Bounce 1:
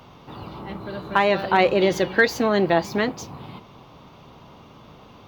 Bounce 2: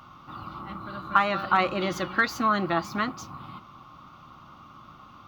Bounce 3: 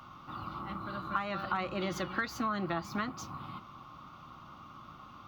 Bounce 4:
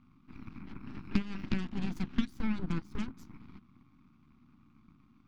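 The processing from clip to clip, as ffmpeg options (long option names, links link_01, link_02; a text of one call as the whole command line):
ffmpeg -i in.wav -af "superequalizer=7b=0.282:8b=0.631:10b=3.98,volume=-5.5dB" out.wav
ffmpeg -i in.wav -filter_complex "[0:a]acrossover=split=150[link_01][link_02];[link_02]acompressor=threshold=-31dB:ratio=3[link_03];[link_01][link_03]amix=inputs=2:normalize=0,volume=-2dB" out.wav
ffmpeg -i in.wav -af "aeval=exprs='0.133*(cos(1*acos(clip(val(0)/0.133,-1,1)))-cos(1*PI/2))+0.0531*(cos(3*acos(clip(val(0)/0.133,-1,1)))-cos(3*PI/2))+0.0668*(cos(4*acos(clip(val(0)/0.133,-1,1)))-cos(4*PI/2))':channel_layout=same,lowshelf=frequency=370:width_type=q:width=3:gain=12.5,volume=-9dB" out.wav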